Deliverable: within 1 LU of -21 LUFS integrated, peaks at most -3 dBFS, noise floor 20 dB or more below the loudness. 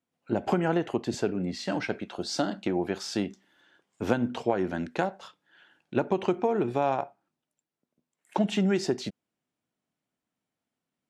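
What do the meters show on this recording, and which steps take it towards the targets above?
loudness -29.5 LUFS; peak level -9.5 dBFS; loudness target -21.0 LUFS
-> trim +8.5 dB; peak limiter -3 dBFS

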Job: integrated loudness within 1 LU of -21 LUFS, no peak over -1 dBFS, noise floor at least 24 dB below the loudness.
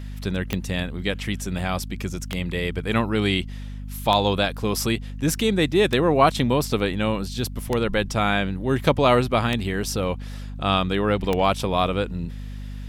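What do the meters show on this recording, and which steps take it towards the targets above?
clicks found 7; hum 50 Hz; highest harmonic 250 Hz; hum level -31 dBFS; loudness -23.0 LUFS; peak level -4.5 dBFS; loudness target -21.0 LUFS
-> de-click; hum notches 50/100/150/200/250 Hz; trim +2 dB

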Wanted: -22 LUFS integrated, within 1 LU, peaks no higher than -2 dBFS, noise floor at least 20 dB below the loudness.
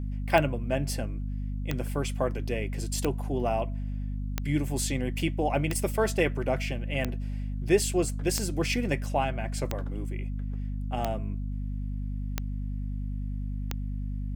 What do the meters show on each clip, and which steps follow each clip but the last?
clicks found 11; hum 50 Hz; highest harmonic 250 Hz; hum level -29 dBFS; loudness -30.5 LUFS; peak level -8.0 dBFS; loudness target -22.0 LUFS
-> de-click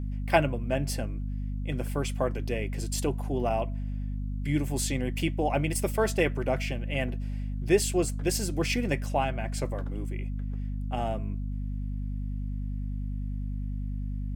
clicks found 0; hum 50 Hz; highest harmonic 250 Hz; hum level -29 dBFS
-> hum notches 50/100/150/200/250 Hz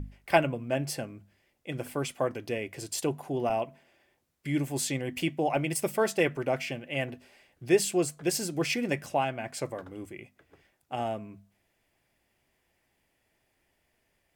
hum not found; loudness -30.5 LUFS; peak level -8.5 dBFS; loudness target -22.0 LUFS
-> trim +8.5 dB; peak limiter -2 dBFS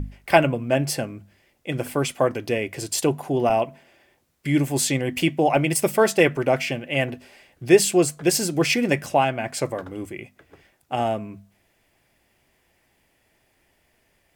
loudness -22.0 LUFS; peak level -2.0 dBFS; noise floor -66 dBFS

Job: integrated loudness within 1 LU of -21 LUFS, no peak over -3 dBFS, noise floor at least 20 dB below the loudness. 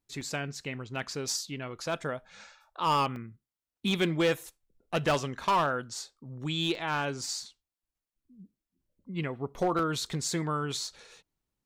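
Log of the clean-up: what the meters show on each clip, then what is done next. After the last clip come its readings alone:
clipped samples 0.6%; clipping level -20.5 dBFS; dropouts 6; longest dropout 1.7 ms; loudness -31.5 LUFS; peak level -20.5 dBFS; loudness target -21.0 LUFS
-> clip repair -20.5 dBFS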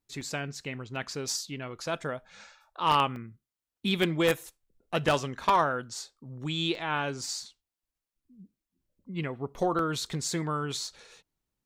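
clipped samples 0.0%; dropouts 6; longest dropout 1.7 ms
-> interpolate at 0.21/0.96/3.16/6.75/9.79/10.87 s, 1.7 ms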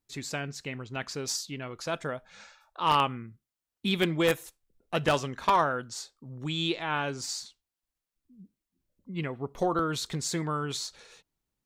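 dropouts 0; loudness -30.5 LUFS; peak level -11.5 dBFS; loudness target -21.0 LUFS
-> trim +9.5 dB; peak limiter -3 dBFS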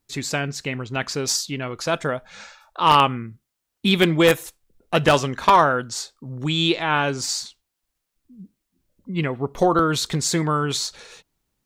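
loudness -21.0 LUFS; peak level -3.0 dBFS; noise floor -80 dBFS

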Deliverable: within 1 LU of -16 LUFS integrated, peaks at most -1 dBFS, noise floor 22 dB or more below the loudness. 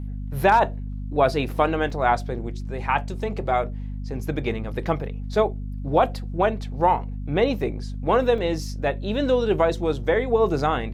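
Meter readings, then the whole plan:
dropouts 2; longest dropout 2.2 ms; hum 50 Hz; highest harmonic 250 Hz; hum level -28 dBFS; loudness -23.5 LUFS; peak level -6.0 dBFS; loudness target -16.0 LUFS
-> interpolate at 1.90/8.38 s, 2.2 ms; hum notches 50/100/150/200/250 Hz; trim +7.5 dB; peak limiter -1 dBFS

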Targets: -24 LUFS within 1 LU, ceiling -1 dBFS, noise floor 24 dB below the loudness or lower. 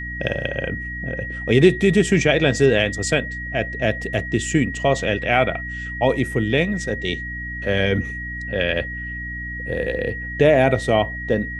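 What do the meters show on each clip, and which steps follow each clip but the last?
hum 60 Hz; highest harmonic 300 Hz; hum level -31 dBFS; steady tone 1.9 kHz; tone level -29 dBFS; loudness -20.5 LUFS; peak level -2.0 dBFS; loudness target -24.0 LUFS
-> de-hum 60 Hz, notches 5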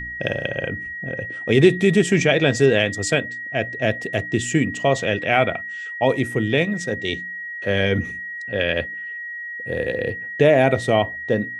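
hum not found; steady tone 1.9 kHz; tone level -29 dBFS
-> band-stop 1.9 kHz, Q 30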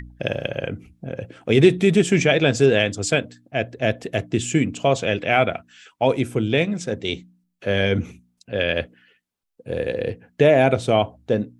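steady tone not found; loudness -21.0 LUFS; peak level -2.5 dBFS; loudness target -24.0 LUFS
-> trim -3 dB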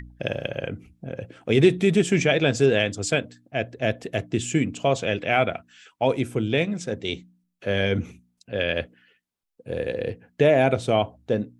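loudness -24.0 LUFS; peak level -5.5 dBFS; noise floor -75 dBFS

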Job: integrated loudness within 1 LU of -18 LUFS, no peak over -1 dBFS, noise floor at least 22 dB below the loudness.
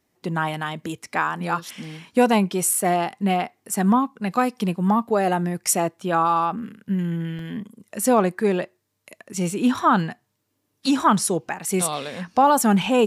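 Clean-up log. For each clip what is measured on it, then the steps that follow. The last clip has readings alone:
dropouts 1; longest dropout 2.5 ms; loudness -22.0 LUFS; peak level -6.5 dBFS; loudness target -18.0 LUFS
-> interpolate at 7.39 s, 2.5 ms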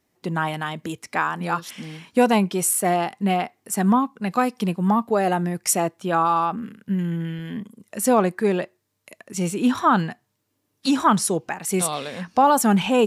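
dropouts 0; loudness -22.0 LUFS; peak level -6.5 dBFS; loudness target -18.0 LUFS
-> trim +4 dB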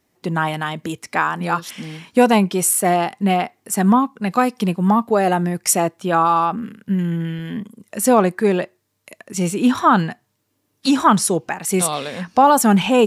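loudness -18.0 LUFS; peak level -2.5 dBFS; noise floor -69 dBFS

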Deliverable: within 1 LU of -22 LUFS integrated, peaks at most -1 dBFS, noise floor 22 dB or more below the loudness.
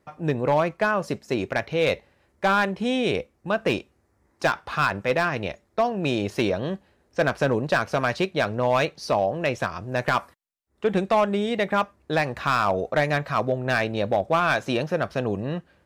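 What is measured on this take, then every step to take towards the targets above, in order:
clipped samples 0.5%; clipping level -13.5 dBFS; loudness -24.5 LUFS; peak level -13.5 dBFS; loudness target -22.0 LUFS
-> clip repair -13.5 dBFS; trim +2.5 dB

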